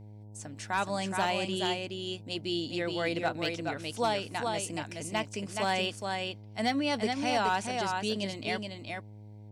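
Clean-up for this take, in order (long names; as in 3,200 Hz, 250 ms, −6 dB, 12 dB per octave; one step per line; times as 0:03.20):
clipped peaks rebuilt −20 dBFS
hum removal 105 Hz, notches 9
echo removal 422 ms −4.5 dB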